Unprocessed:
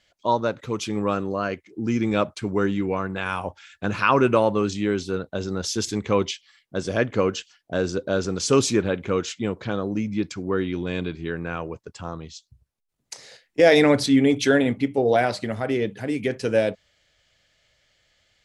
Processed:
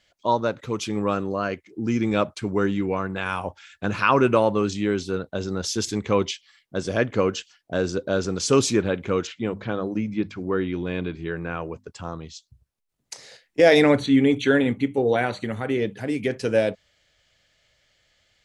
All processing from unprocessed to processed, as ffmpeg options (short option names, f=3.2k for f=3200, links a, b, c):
-filter_complex "[0:a]asettb=1/sr,asplit=3[a][b][c];[a]atrim=end=9.274[d];[b]atrim=start=9.27:end=11.9,asetpts=PTS-STARTPTS,afade=t=in:d=0.004:c=qsin,afade=t=out:st=2.626:d=0.004:c=qsin,bandreject=f=50:t=h:w=6,bandreject=f=100:t=h:w=6,bandreject=f=150:t=h:w=6,bandreject=f=200:t=h:w=6,bandreject=f=250:t=h:w=6,acrossover=split=3600[e][f];[f]acompressor=threshold=-59dB:ratio=4:attack=1:release=60[g];[e][g]amix=inputs=2:normalize=0[h];[c]atrim=start=11.896[i];[d][h]acrossfade=d=0.004:c1=hsin:c2=qsin[j];[j][i]acrossfade=d=0.004:c1=qsin:c2=hsin,asettb=1/sr,asplit=3[k][l][m];[k]atrim=end=13.984[n];[l]atrim=start=13.98:end=15.78,asetpts=PTS-STARTPTS,afade=t=in:d=0.004:c=qsin,afade=t=out:st=1.796:d=0.004:c=qsin,acrossover=split=4200[o][p];[p]acompressor=threshold=-45dB:ratio=4:attack=1:release=60[q];[o][q]amix=inputs=2:normalize=0,asuperstop=centerf=5100:order=20:qfactor=4.7,equalizer=f=650:w=5.6:g=-9[r];[m]atrim=start=15.776[s];[n][r]acrossfade=d=0.004:c1=hsin:c2=qsin[t];[t][s]acrossfade=d=0.004:c1=qsin:c2=hsin"